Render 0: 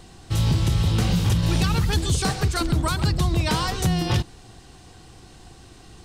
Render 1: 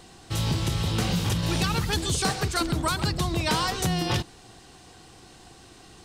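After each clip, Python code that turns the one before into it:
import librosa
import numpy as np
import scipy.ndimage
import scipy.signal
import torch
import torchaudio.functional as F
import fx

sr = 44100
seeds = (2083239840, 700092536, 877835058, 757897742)

y = fx.low_shelf(x, sr, hz=140.0, db=-10.5)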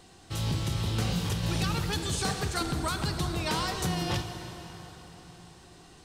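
y = fx.rev_plate(x, sr, seeds[0], rt60_s=4.4, hf_ratio=0.8, predelay_ms=0, drr_db=6.0)
y = F.gain(torch.from_numpy(y), -5.5).numpy()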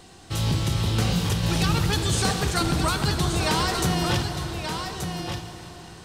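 y = x + 10.0 ** (-7.0 / 20.0) * np.pad(x, (int(1179 * sr / 1000.0), 0))[:len(x)]
y = F.gain(torch.from_numpy(y), 6.0).numpy()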